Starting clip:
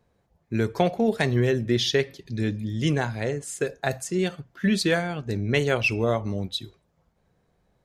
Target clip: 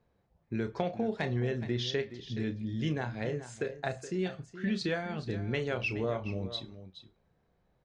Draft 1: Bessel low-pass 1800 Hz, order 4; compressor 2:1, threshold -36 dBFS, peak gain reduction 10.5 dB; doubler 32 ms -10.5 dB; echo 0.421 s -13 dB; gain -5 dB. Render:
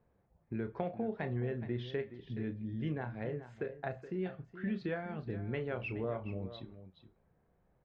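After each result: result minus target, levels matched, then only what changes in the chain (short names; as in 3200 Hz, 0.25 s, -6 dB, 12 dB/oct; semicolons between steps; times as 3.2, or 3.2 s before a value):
4000 Hz band -10.0 dB; compressor: peak gain reduction +4.5 dB
change: Bessel low-pass 4400 Hz, order 4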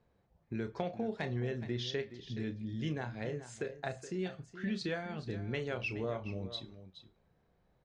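compressor: peak gain reduction +4.5 dB
change: compressor 2:1, threshold -27 dBFS, peak gain reduction 6.5 dB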